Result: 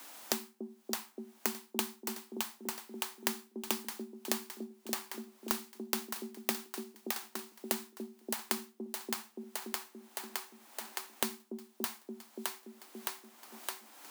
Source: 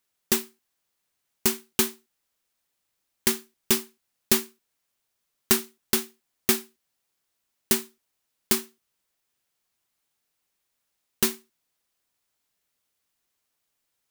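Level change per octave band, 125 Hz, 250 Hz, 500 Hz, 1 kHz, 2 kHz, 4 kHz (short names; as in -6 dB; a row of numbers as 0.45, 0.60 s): under -10 dB, -8.0 dB, -8.5 dB, -2.0 dB, -7.0 dB, -8.5 dB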